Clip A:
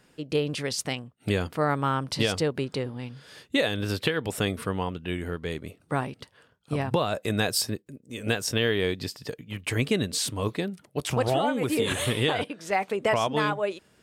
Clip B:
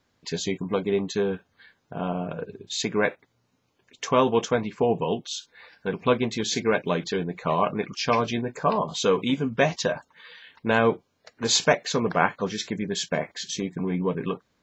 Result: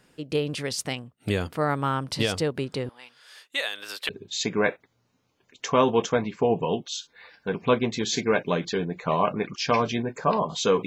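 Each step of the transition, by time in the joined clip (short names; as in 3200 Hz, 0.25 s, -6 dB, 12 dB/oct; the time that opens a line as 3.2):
clip A
2.89–4.09 HPF 940 Hz 12 dB/oct
4.09 switch to clip B from 2.48 s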